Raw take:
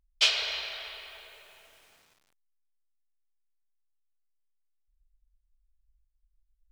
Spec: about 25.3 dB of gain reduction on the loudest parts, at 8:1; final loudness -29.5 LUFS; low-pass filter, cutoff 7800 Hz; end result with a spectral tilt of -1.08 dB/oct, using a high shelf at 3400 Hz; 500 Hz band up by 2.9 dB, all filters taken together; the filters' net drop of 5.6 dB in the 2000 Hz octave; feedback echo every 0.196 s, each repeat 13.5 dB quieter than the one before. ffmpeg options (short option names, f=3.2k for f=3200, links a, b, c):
-af "lowpass=7.8k,equalizer=f=500:t=o:g=4.5,equalizer=f=2k:t=o:g=-4.5,highshelf=f=3.4k:g=-7.5,acompressor=threshold=-51dB:ratio=8,aecho=1:1:196|392:0.211|0.0444,volume=24.5dB"